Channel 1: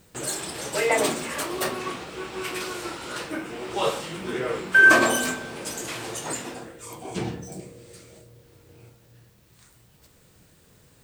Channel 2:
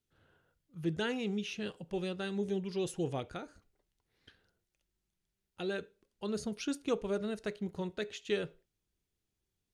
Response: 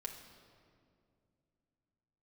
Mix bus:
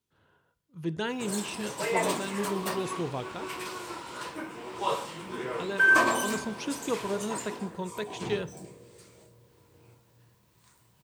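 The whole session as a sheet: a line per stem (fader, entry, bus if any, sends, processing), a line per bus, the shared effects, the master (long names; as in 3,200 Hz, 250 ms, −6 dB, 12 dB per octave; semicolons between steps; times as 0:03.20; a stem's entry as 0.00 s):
−7.0 dB, 1.05 s, no send, no processing
+0.5 dB, 0.00 s, send −12 dB, no processing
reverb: on, RT60 2.4 s, pre-delay 5 ms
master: high-pass filter 65 Hz; parametric band 990 Hz +11.5 dB 0.23 octaves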